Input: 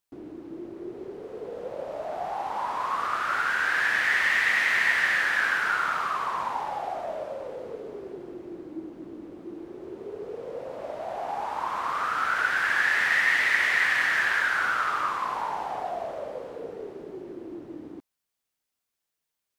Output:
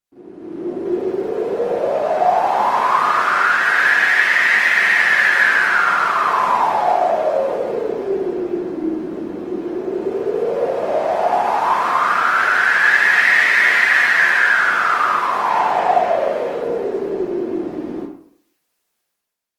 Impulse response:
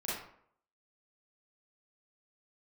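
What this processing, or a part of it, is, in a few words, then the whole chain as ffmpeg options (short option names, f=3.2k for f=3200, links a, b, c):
far-field microphone of a smart speaker: -filter_complex "[0:a]asettb=1/sr,asplit=3[a][b][c];[a]atrim=end=15.444[d];[b]atrim=start=15.44:end=16.54,asetpts=PTS-STARTPTS,afade=t=in:d=0.004:c=qsin,afade=t=out:st=1.096:d=0.004:c=qsin,equalizer=f=2.3k:w=0.98:g=5[e];[c]atrim=start=16.536[f];[d][e]acrossfade=d=0.004:c1=hsin:c2=qsin[g];[g][f]acrossfade=d=0.004:c1=qsin:c2=hsin[h];[1:a]atrim=start_sample=2205[i];[h][i]afir=irnorm=-1:irlink=0,highpass=f=150:p=1,dynaudnorm=f=100:g=11:m=14dB,volume=-1dB" -ar 48000 -c:a libopus -b:a 20k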